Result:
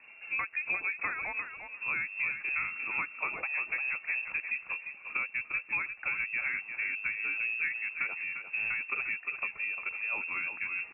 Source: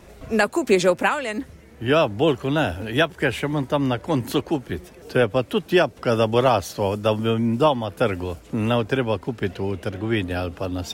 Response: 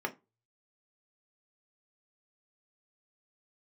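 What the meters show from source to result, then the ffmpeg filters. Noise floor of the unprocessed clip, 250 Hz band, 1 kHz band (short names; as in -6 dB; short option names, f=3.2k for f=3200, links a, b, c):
-46 dBFS, -34.5 dB, -17.5 dB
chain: -filter_complex "[0:a]acompressor=threshold=-22dB:ratio=6,asplit=2[a][b];[b]aecho=0:1:350|700|1050:0.398|0.0677|0.0115[c];[a][c]amix=inputs=2:normalize=0,lowpass=f=2.4k:t=q:w=0.5098,lowpass=f=2.4k:t=q:w=0.6013,lowpass=f=2.4k:t=q:w=0.9,lowpass=f=2.4k:t=q:w=2.563,afreqshift=-2800,volume=-8dB"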